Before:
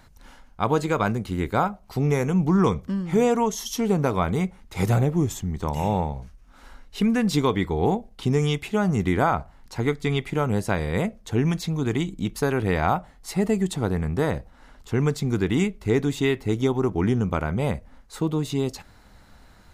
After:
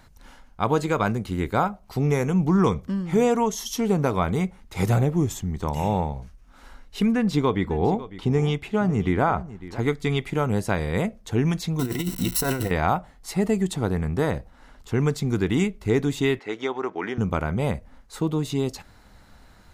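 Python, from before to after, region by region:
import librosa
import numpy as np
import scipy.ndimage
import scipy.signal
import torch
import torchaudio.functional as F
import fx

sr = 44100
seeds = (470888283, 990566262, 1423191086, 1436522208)

y = fx.chain(x, sr, fx.high_shelf(hz=4300.0, db=-11.0),
    fx.echo_single(ms=552, db=-16.0), at=(7.12, 9.79))
y = fx.chain(y, sr, fx.crossing_spikes(level_db=-22.5),
    fx.ripple_eq(per_octave=2.0, db=12),
    fx.over_compress(threshold_db=-24.0, ratio=-0.5), at=(11.79, 12.71))
y = fx.chain(y, sr, fx.bandpass_edges(low_hz=460.0, high_hz=4600.0),
    fx.peak_eq(hz=1800.0, db=6.5, octaves=0.88), at=(16.39, 17.18))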